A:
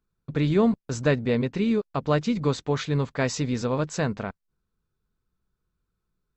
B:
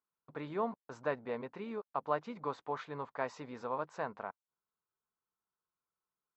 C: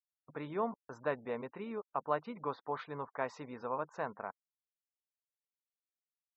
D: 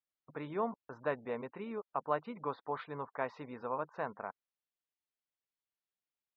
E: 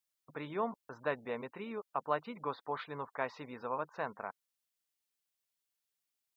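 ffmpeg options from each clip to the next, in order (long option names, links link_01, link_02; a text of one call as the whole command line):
ffmpeg -i in.wav -af "bandpass=frequency=940:width_type=q:width=2:csg=0,volume=-3dB" out.wav
ffmpeg -i in.wav -af "afftfilt=real='re*gte(hypot(re,im),0.00158)':imag='im*gte(hypot(re,im),0.00158)':win_size=1024:overlap=0.75" out.wav
ffmpeg -i in.wav -af "lowpass=frequency=4200:width=0.5412,lowpass=frequency=4200:width=1.3066" out.wav
ffmpeg -i in.wav -af "highshelf=frequency=2600:gain=10.5,volume=-1dB" out.wav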